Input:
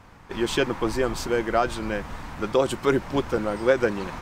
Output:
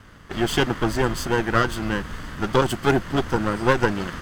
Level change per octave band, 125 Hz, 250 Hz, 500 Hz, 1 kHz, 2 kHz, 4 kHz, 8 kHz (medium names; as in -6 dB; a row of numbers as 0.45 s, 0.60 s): +8.0 dB, +3.0 dB, -0.5 dB, +4.0 dB, +4.5 dB, +4.0 dB, +3.0 dB